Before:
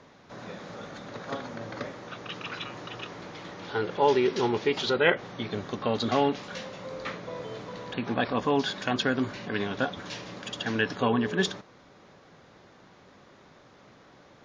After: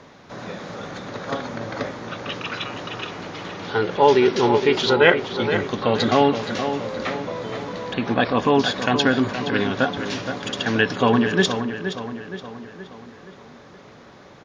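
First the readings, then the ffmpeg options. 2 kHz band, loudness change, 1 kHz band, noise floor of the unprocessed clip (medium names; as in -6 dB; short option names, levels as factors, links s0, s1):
+8.0 dB, +8.0 dB, +8.5 dB, -55 dBFS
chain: -filter_complex "[0:a]asplit=2[s0][s1];[s1]adelay=471,lowpass=f=3700:p=1,volume=0.376,asplit=2[s2][s3];[s3]adelay=471,lowpass=f=3700:p=1,volume=0.52,asplit=2[s4][s5];[s5]adelay=471,lowpass=f=3700:p=1,volume=0.52,asplit=2[s6][s7];[s7]adelay=471,lowpass=f=3700:p=1,volume=0.52,asplit=2[s8][s9];[s9]adelay=471,lowpass=f=3700:p=1,volume=0.52,asplit=2[s10][s11];[s11]adelay=471,lowpass=f=3700:p=1,volume=0.52[s12];[s0][s2][s4][s6][s8][s10][s12]amix=inputs=7:normalize=0,volume=2.37"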